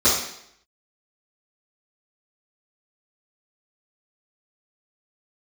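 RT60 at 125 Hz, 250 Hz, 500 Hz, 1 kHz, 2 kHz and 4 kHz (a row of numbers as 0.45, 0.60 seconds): 0.65, 0.70, 0.75, 0.70, 0.70, 0.70 seconds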